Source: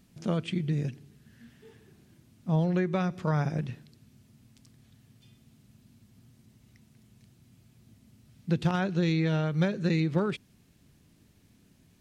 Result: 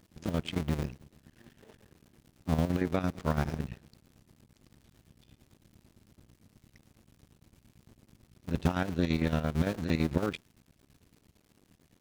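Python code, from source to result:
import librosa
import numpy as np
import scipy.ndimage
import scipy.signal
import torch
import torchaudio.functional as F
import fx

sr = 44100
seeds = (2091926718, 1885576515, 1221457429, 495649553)

y = fx.cycle_switch(x, sr, every=2, mode='muted')
y = fx.chopper(y, sr, hz=8.9, depth_pct=60, duty_pct=60)
y = fx.dmg_crackle(y, sr, seeds[0], per_s=40.0, level_db=-51.0)
y = y * librosa.db_to_amplitude(2.0)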